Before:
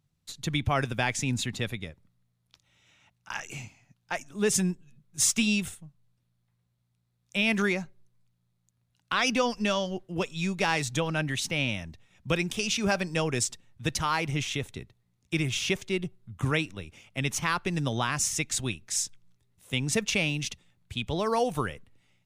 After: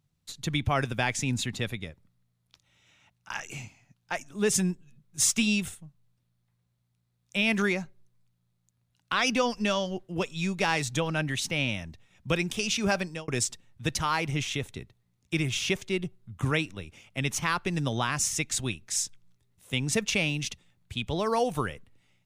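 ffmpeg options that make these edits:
-filter_complex "[0:a]asplit=2[s0][s1];[s0]atrim=end=13.28,asetpts=PTS-STARTPTS,afade=t=out:st=12.99:d=0.29[s2];[s1]atrim=start=13.28,asetpts=PTS-STARTPTS,afade=t=in:d=0.004:c=hsin[s3];[s2][s3]concat=n=2:v=0:a=1"

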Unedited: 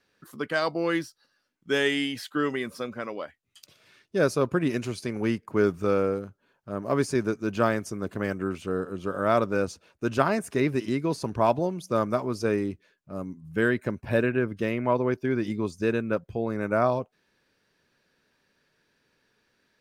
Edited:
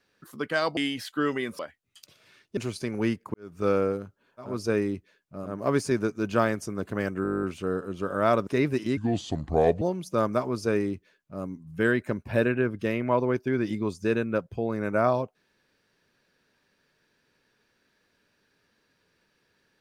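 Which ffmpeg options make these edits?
-filter_complex "[0:a]asplit=20[s0][s1][s2][s3][s4][s5][s6][s7][s8][s9][s10][s11][s12][s13][s14][s15][s16][s17][s18][s19];[s0]atrim=end=0.772[s20];[s1]atrim=start=1.948:end=2.772[s21];[s2]atrim=start=3.188:end=4.172[s22];[s3]atrim=start=4.788:end=5.56,asetpts=PTS-STARTPTS,afade=t=out:st=0.768:d=0.004:c=hsin[s23];[s4]atrim=start=5.56:end=6.83,asetpts=PTS-STARTPTS,afade=t=in:d=0.32:c=qua[s24];[s5]atrim=start=12.13:end=13.35[s25];[s6]atrim=start=6.59:end=8.492[s26];[s7]atrim=start=8.468:end=8.492[s27];[s8]atrim=start=8.468:end=8.492[s28];[s9]atrim=start=8.468:end=8.492[s29];[s10]atrim=start=8.468:end=8.492[s30];[s11]atrim=start=8.468:end=8.492[s31];[s12]atrim=start=8.468:end=8.492[s32];[s13]atrim=start=8.468:end=8.492[s33];[s14]atrim=start=8.468:end=8.492[s34];[s15]atrim=start=8.468:end=8.492[s35];[s16]atrim=start=8.468:end=9.512[s36];[s17]atrim=start=10.488:end=10.994[s37];[s18]atrim=start=10.99:end=11.59,asetpts=PTS-STARTPTS,asetrate=31311,aresample=44100[s38];[s19]atrim=start=11.586[s39];[s20][s21]acrossfade=d=0.004:c1=hsin:c2=hsin[s40];[s40][s22]acrossfade=d=0.004:c1=hsin:c2=hsin[s41];[s23][s24]concat=n=2:v=0:a=1[s42];[s41][s42]acrossfade=d=0.004:c1=hsin:c2=hsin[s43];[s43][s25]acrossfade=d=0.24:c1=tri:c2=tri[s44];[s44][s26]acrossfade=d=0.24:c1=tri:c2=tri[s45];[s45][s27]acrossfade=d=0.004:c1=hsin:c2=hsin[s46];[s46][s28]acrossfade=d=0.004:c1=hsin:c2=hsin[s47];[s47][s29]acrossfade=d=0.004:c1=hsin:c2=hsin[s48];[s48][s30]acrossfade=d=0.004:c1=hsin:c2=hsin[s49];[s49][s31]acrossfade=d=0.004:c1=hsin:c2=hsin[s50];[s50][s32]acrossfade=d=0.004:c1=hsin:c2=hsin[s51];[s51][s33]acrossfade=d=0.004:c1=hsin:c2=hsin[s52];[s52][s34]acrossfade=d=0.004:c1=hsin:c2=hsin[s53];[s53][s35]acrossfade=d=0.004:c1=hsin:c2=hsin[s54];[s54][s36]acrossfade=d=0.004:c1=hsin:c2=hsin[s55];[s55][s37]acrossfade=d=0.004:c1=hsin:c2=hsin[s56];[s56][s38]acrossfade=d=0.004:c1=hsin:c2=hsin[s57];[s57][s39]acrossfade=d=0.004:c1=hsin:c2=hsin"

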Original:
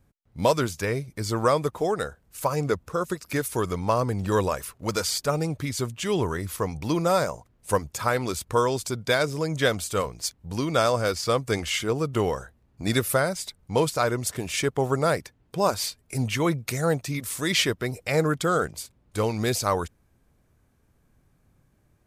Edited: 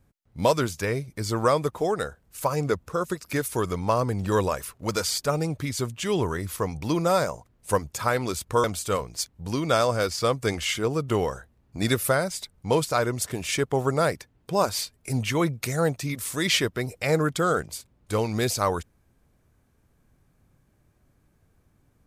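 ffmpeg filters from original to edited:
-filter_complex "[0:a]asplit=2[s0][s1];[s0]atrim=end=8.642[s2];[s1]atrim=start=9.688[s3];[s2][s3]acrossfade=d=0.004:c1=hsin:c2=hsin"

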